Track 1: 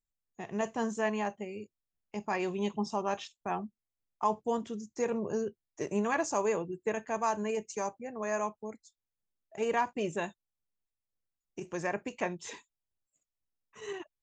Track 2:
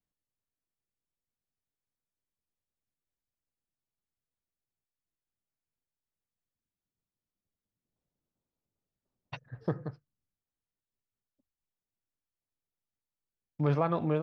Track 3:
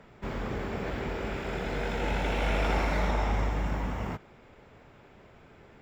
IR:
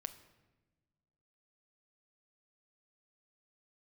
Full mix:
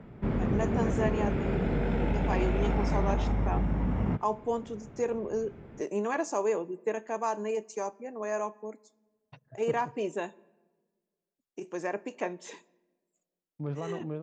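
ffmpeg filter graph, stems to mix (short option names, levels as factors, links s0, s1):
-filter_complex "[0:a]highpass=320,volume=0.501,asplit=2[s0][s1];[s1]volume=0.562[s2];[1:a]volume=0.188,asplit=2[s3][s4];[s4]volume=0.0668[s5];[2:a]bass=f=250:g=7,treble=f=4000:g=-11,acompressor=threshold=0.0631:ratio=6,volume=0.668[s6];[3:a]atrim=start_sample=2205[s7];[s2][s5]amix=inputs=2:normalize=0[s8];[s8][s7]afir=irnorm=-1:irlink=0[s9];[s0][s3][s6][s9]amix=inputs=4:normalize=0,equalizer=f=240:w=0.44:g=8.5"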